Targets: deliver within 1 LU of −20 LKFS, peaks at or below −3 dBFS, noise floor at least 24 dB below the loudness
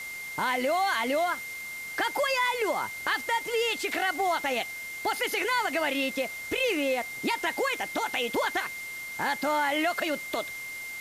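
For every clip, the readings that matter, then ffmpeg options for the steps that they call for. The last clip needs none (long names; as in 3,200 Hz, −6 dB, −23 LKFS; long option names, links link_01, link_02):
interfering tone 2,100 Hz; level of the tone −36 dBFS; background noise floor −38 dBFS; target noise floor −53 dBFS; integrated loudness −28.5 LKFS; sample peak −15.0 dBFS; target loudness −20.0 LKFS
→ -af "bandreject=frequency=2100:width=30"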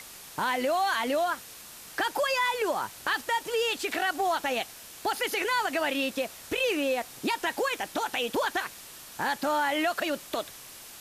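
interfering tone none found; background noise floor −47 dBFS; target noise floor −53 dBFS
→ -af "afftdn=noise_reduction=6:noise_floor=-47"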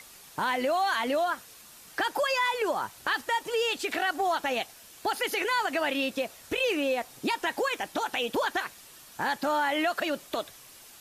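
background noise floor −51 dBFS; target noise floor −53 dBFS
→ -af "afftdn=noise_reduction=6:noise_floor=-51"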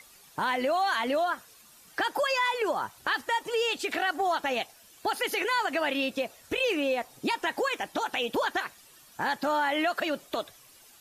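background noise floor −56 dBFS; integrated loudness −29.0 LKFS; sample peak −16.0 dBFS; target loudness −20.0 LKFS
→ -af "volume=9dB"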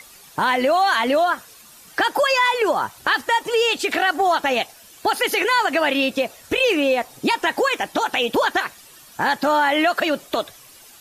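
integrated loudness −20.0 LKFS; sample peak −7.0 dBFS; background noise floor −47 dBFS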